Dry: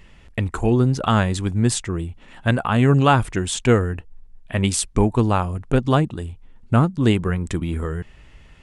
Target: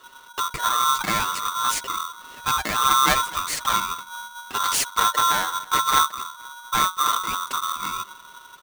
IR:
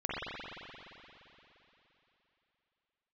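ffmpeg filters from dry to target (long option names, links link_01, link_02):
-filter_complex "[0:a]asettb=1/sr,asplit=3[link_01][link_02][link_03];[link_01]atrim=end=4.594[link_04];[link_02]atrim=start=4.59:end=6.03,asetpts=PTS-STARTPTS,afade=type=in:duration=0.004:curve=qsin,afade=type=out:start_time=1.436:duration=0.004:curve=qsin,equalizer=frequency=125:width_type=o:width=1:gain=8,equalizer=frequency=250:width_type=o:width=1:gain=-8,equalizer=frequency=500:width_type=o:width=1:gain=12,equalizer=frequency=1000:width_type=o:width=1:gain=-3,equalizer=frequency=2000:width_type=o:width=1:gain=-3,equalizer=frequency=4000:width_type=o:width=1:gain=10,equalizer=frequency=8000:width_type=o:width=1:gain=3[link_05];[link_03]atrim=start=6.026[link_06];[link_04][link_05]acrossfade=duration=0.004:curve1=hsin:curve2=qsin[link_07];[link_07][link_06]acrossfade=duration=0.004:curve1=qsin:curve2=hsin,asoftclip=type=tanh:threshold=-17dB,aecho=1:1:7:0.76,afreqshift=-270,asplit=2[link_08][link_09];[link_09]adelay=237,lowpass=frequency=2000:poles=1,volume=-21.5dB,asplit=2[link_10][link_11];[link_11]adelay=237,lowpass=frequency=2000:poles=1,volume=0.49,asplit=2[link_12][link_13];[link_13]adelay=237,lowpass=frequency=2000:poles=1,volume=0.49[link_14];[link_10][link_12][link_14]amix=inputs=3:normalize=0[link_15];[link_08][link_15]amix=inputs=2:normalize=0,aeval=exprs='val(0)*sgn(sin(2*PI*1200*n/s))':channel_layout=same,volume=-2.5dB"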